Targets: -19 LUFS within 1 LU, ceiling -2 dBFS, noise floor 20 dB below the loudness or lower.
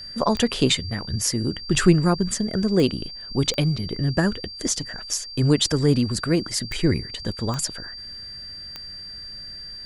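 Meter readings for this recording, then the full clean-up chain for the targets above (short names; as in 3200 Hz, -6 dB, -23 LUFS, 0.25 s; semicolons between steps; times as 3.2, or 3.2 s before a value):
clicks 6; steady tone 4700 Hz; tone level -35 dBFS; loudness -23.0 LUFS; peak -3.0 dBFS; loudness target -19.0 LUFS
-> de-click; notch 4700 Hz, Q 30; gain +4 dB; limiter -2 dBFS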